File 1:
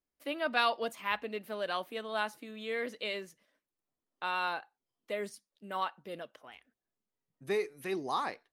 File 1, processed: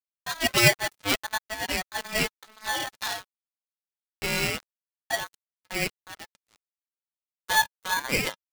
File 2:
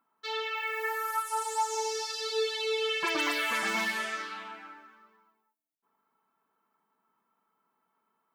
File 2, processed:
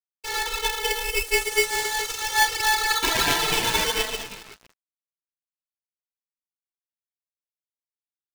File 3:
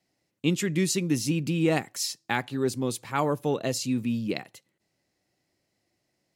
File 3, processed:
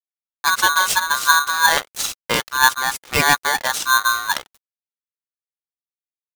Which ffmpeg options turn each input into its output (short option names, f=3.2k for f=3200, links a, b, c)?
-af "aeval=exprs='sgn(val(0))*max(abs(val(0))-0.00891,0)':c=same,aphaser=in_gain=1:out_gain=1:delay=2.7:decay=0.46:speed=1.5:type=sinusoidal,aeval=exprs='val(0)*sgn(sin(2*PI*1300*n/s))':c=same,volume=8dB"